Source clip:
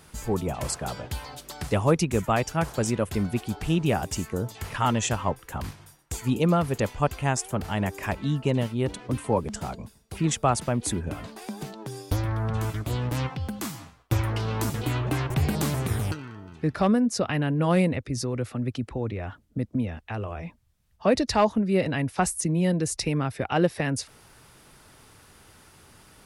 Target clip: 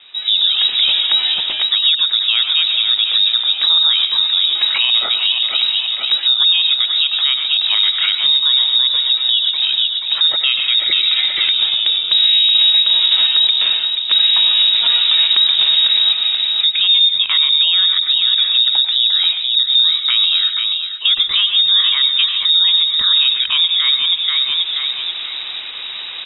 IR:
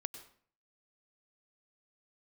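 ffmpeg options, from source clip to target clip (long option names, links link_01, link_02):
-filter_complex "[0:a]tiltshelf=frequency=1200:gain=3.5,aecho=1:1:482|964|1446|1928:0.299|0.102|0.0345|0.0117[link_01];[1:a]atrim=start_sample=2205,atrim=end_sample=6615[link_02];[link_01][link_02]afir=irnorm=-1:irlink=0,dynaudnorm=framelen=240:gausssize=3:maxgain=16dB,asettb=1/sr,asplit=3[link_03][link_04][link_05];[link_03]atrim=end=10.394[link_06];[link_04]atrim=start=10.39:end=11.52,asetpts=PTS-STARTPTS,afade=type=in:duration=0.004:curve=qsin,afade=type=out:start_time=1.126:duration=0.004:curve=qsin,equalizer=frequency=1800:width=4.1:gain=14[link_07];[link_05]atrim=start=11.516[link_08];[link_06][link_07]acrossfade=duration=0.004:curve1=hsin:curve2=qsin[link_09];[link_09][link_08]acrossfade=duration=0.004:curve1=qsin:curve2=hsin,lowpass=frequency=3300:width_type=q:width=0.5098,lowpass=frequency=3300:width_type=q:width=0.6013,lowpass=frequency=3300:width_type=q:width=0.9,lowpass=frequency=3300:width_type=q:width=2.563,afreqshift=-3900,acompressor=threshold=-26dB:ratio=2,alimiter=level_in=14dB:limit=-1dB:release=50:level=0:latency=1,volume=-4dB"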